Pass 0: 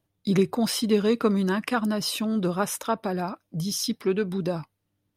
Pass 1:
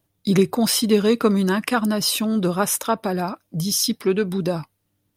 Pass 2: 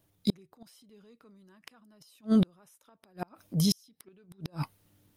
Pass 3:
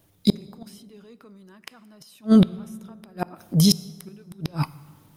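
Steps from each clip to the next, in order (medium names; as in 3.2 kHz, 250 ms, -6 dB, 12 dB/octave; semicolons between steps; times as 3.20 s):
treble shelf 6.7 kHz +7.5 dB; trim +4.5 dB
transient shaper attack -4 dB, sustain +6 dB; inverted gate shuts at -14 dBFS, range -39 dB
plate-style reverb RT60 2.1 s, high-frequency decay 0.5×, DRR 17.5 dB; trim +9 dB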